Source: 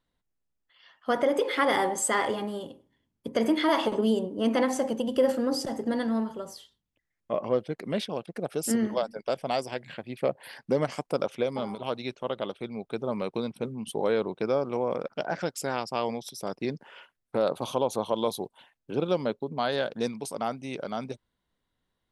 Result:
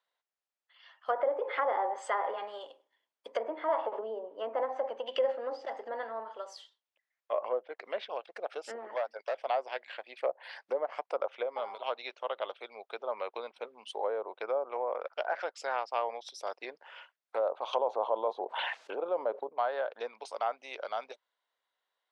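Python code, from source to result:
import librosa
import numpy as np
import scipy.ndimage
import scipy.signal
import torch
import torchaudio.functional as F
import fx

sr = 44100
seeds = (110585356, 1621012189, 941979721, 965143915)

y = fx.band_shelf(x, sr, hz=4400.0, db=11.5, octaves=2.6, at=(5.06, 5.7))
y = fx.overload_stage(y, sr, gain_db=24.5, at=(8.78, 9.45))
y = fx.env_flatten(y, sr, amount_pct=70, at=(17.73, 19.49))
y = scipy.signal.sosfilt(scipy.signal.bessel(2, 4900.0, 'lowpass', norm='mag', fs=sr, output='sos'), y)
y = fx.env_lowpass_down(y, sr, base_hz=850.0, full_db=-22.0)
y = scipy.signal.sosfilt(scipy.signal.butter(4, 570.0, 'highpass', fs=sr, output='sos'), y)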